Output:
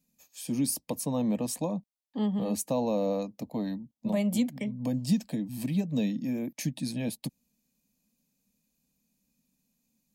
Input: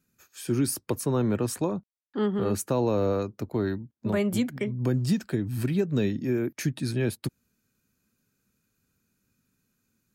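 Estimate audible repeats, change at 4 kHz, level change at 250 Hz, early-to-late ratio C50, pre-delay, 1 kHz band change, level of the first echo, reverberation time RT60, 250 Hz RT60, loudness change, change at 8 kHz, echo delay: no echo, -1.5 dB, -1.5 dB, no reverb, no reverb, -3.5 dB, no echo, no reverb, no reverb, -3.0 dB, -0.5 dB, no echo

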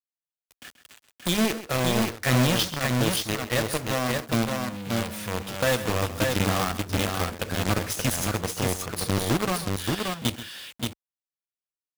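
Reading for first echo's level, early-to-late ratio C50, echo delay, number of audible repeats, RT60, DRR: -14.0 dB, no reverb, 132 ms, 2, no reverb, no reverb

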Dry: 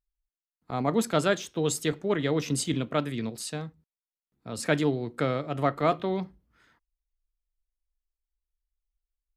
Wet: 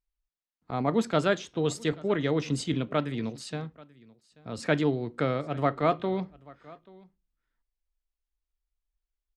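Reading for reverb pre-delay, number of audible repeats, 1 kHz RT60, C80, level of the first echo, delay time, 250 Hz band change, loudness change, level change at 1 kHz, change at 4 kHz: no reverb, 1, no reverb, no reverb, -23.0 dB, 835 ms, 0.0 dB, -0.5 dB, -0.5 dB, -2.0 dB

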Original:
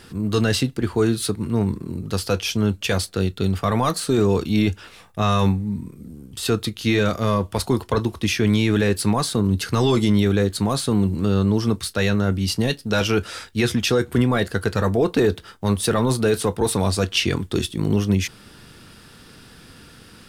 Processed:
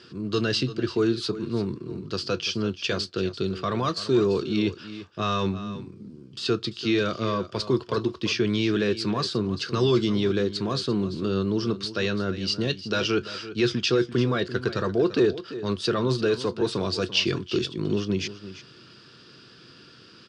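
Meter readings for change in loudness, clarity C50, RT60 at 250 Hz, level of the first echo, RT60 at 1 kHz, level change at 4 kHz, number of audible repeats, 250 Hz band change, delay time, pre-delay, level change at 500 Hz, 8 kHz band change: -4.5 dB, no reverb, no reverb, -14.0 dB, no reverb, -1.5 dB, 1, -5.0 dB, 341 ms, no reverb, -3.0 dB, -11.5 dB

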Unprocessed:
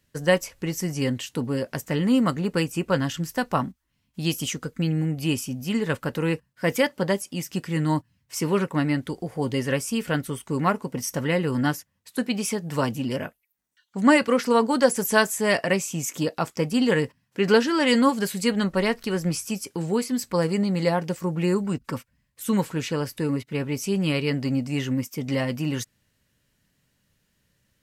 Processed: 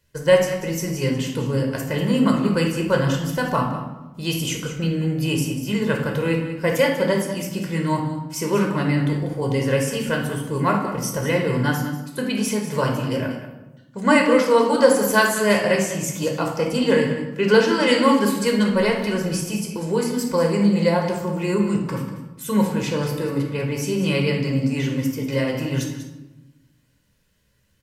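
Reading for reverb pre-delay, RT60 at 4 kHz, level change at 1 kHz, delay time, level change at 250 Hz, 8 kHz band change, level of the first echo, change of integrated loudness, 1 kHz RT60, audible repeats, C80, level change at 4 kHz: 15 ms, 0.70 s, +3.5 dB, 192 ms, +3.0 dB, +2.0 dB, -12.0 dB, +3.5 dB, 1.0 s, 1, 7.0 dB, +3.0 dB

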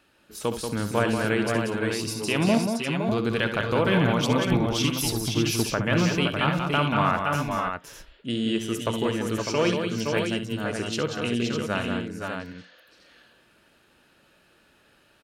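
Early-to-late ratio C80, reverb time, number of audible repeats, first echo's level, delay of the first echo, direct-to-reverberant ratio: no reverb, no reverb, 5, -10.0 dB, 67 ms, no reverb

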